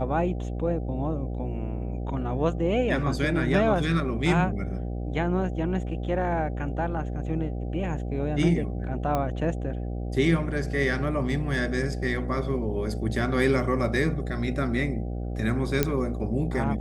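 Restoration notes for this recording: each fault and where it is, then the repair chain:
buzz 60 Hz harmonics 13 -31 dBFS
9.15 s: pop -14 dBFS
15.83 s: pop -7 dBFS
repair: de-click; de-hum 60 Hz, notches 13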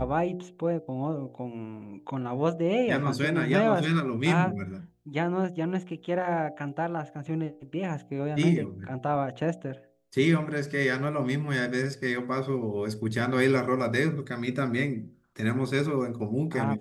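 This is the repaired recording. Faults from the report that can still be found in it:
nothing left

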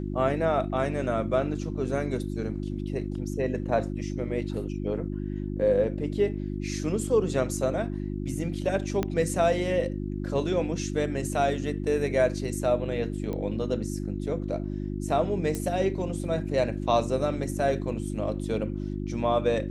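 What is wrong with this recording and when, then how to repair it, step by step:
hum 50 Hz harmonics 7 -32 dBFS
9.03 s: pop -13 dBFS
13.33 s: pop -22 dBFS
15.55 s: pop -17 dBFS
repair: de-click; de-hum 50 Hz, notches 7

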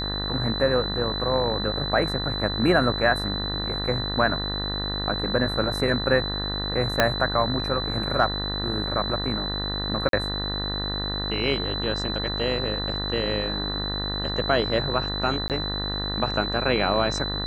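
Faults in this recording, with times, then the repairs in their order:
buzz 50 Hz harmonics 39 -31 dBFS
whine 4 kHz -29 dBFS
7.00 s: pop -3 dBFS
10.09–10.13 s: dropout 42 ms
15.48–15.50 s: dropout 18 ms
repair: de-click; de-hum 50 Hz, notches 39; band-stop 4 kHz, Q 30; interpolate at 10.09 s, 42 ms; interpolate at 15.48 s, 18 ms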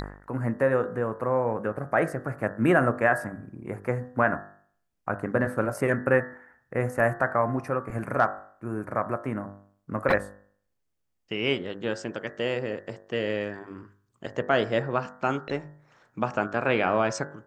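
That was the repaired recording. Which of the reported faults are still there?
7.00 s: pop

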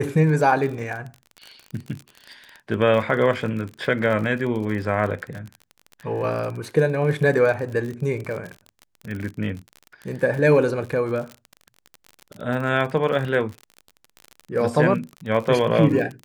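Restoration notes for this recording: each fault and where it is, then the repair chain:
crackle 46 per s -29 dBFS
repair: de-click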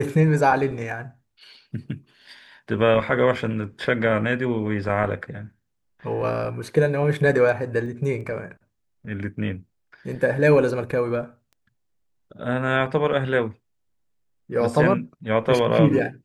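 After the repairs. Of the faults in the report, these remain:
nothing left

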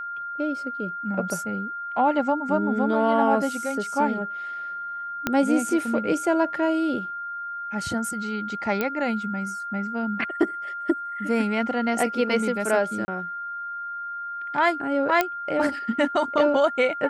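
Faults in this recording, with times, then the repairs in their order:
whine 1.4 kHz -30 dBFS
5.27 s: pop -8 dBFS
8.81 s: pop -11 dBFS
13.05–13.08 s: dropout 30 ms
15.21 s: pop -7 dBFS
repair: de-click; band-stop 1.4 kHz, Q 30; interpolate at 13.05 s, 30 ms

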